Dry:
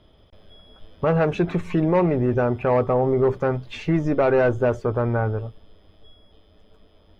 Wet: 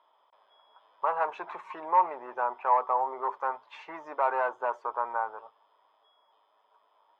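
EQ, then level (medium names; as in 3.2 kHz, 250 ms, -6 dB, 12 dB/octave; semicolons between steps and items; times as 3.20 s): ladder high-pass 900 Hz, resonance 75%; tilt EQ -4 dB/octave; +4.5 dB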